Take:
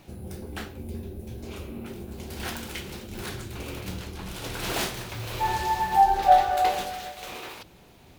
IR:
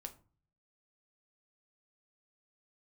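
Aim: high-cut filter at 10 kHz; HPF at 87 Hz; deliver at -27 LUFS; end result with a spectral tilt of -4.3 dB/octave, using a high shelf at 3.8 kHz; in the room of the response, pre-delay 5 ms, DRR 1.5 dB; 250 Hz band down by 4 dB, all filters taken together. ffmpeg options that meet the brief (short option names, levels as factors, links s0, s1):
-filter_complex "[0:a]highpass=87,lowpass=10000,equalizer=f=250:t=o:g=-5.5,highshelf=f=3800:g=-7.5,asplit=2[s0][s1];[1:a]atrim=start_sample=2205,adelay=5[s2];[s1][s2]afir=irnorm=-1:irlink=0,volume=1.41[s3];[s0][s3]amix=inputs=2:normalize=0"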